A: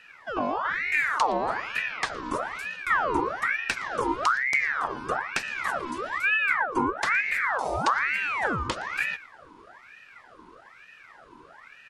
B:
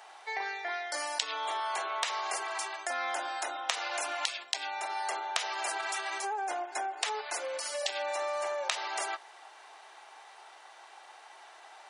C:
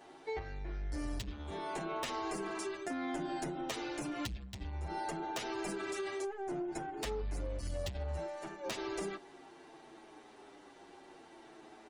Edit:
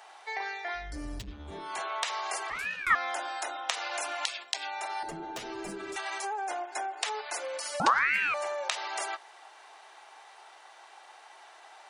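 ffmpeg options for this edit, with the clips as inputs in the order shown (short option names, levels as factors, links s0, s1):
-filter_complex "[2:a]asplit=2[s0][s1];[0:a]asplit=2[s2][s3];[1:a]asplit=5[s4][s5][s6][s7][s8];[s4]atrim=end=0.97[s9];[s0]atrim=start=0.73:end=1.82[s10];[s5]atrim=start=1.58:end=2.502[s11];[s2]atrim=start=2.498:end=2.952[s12];[s6]atrim=start=2.948:end=5.032[s13];[s1]atrim=start=5.028:end=5.962[s14];[s7]atrim=start=5.958:end=7.802[s15];[s3]atrim=start=7.798:end=8.342[s16];[s8]atrim=start=8.338[s17];[s9][s10]acrossfade=d=0.24:c1=tri:c2=tri[s18];[s18][s11]acrossfade=d=0.24:c1=tri:c2=tri[s19];[s19][s12]acrossfade=d=0.004:c1=hsin:c2=hsin[s20];[s20][s13]acrossfade=d=0.004:c1=hsin:c2=hsin[s21];[s21][s14]acrossfade=d=0.004:c1=hsin:c2=hsin[s22];[s22][s15]acrossfade=d=0.004:c1=hsin:c2=hsin[s23];[s23][s16]acrossfade=d=0.004:c1=hsin:c2=hsin[s24];[s24][s17]acrossfade=d=0.004:c1=hsin:c2=hsin"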